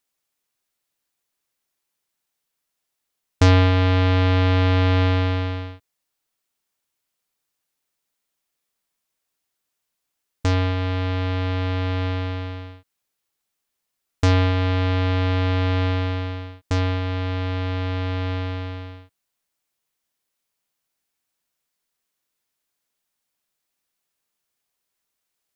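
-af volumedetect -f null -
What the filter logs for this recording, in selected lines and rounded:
mean_volume: -24.7 dB
max_volume: -5.3 dB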